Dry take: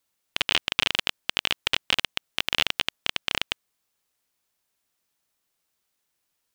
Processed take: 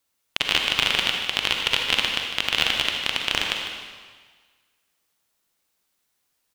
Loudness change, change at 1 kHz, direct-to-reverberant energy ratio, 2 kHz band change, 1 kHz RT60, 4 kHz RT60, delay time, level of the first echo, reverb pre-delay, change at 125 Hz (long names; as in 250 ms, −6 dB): +3.5 dB, +4.0 dB, 1.0 dB, +4.0 dB, 1.6 s, 1.5 s, 152 ms, −10.5 dB, 37 ms, +3.5 dB